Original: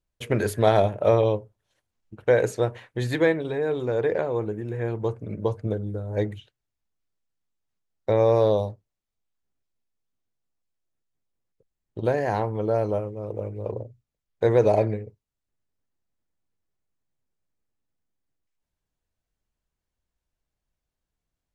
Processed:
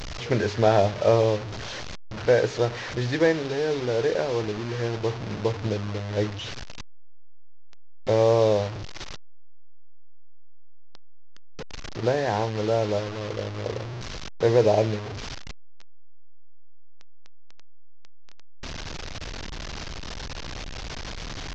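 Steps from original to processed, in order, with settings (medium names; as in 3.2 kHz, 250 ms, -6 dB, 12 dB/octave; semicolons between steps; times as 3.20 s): one-bit delta coder 32 kbps, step -28 dBFS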